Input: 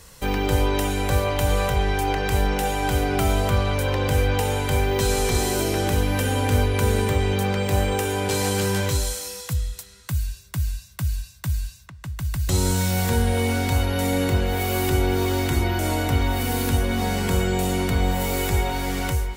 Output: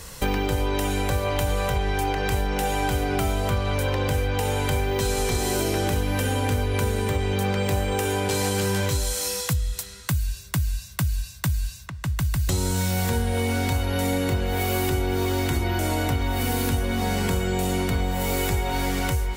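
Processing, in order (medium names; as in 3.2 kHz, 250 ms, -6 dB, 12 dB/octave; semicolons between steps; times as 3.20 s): compression, threshold -28 dBFS, peak gain reduction 13 dB; trim +7 dB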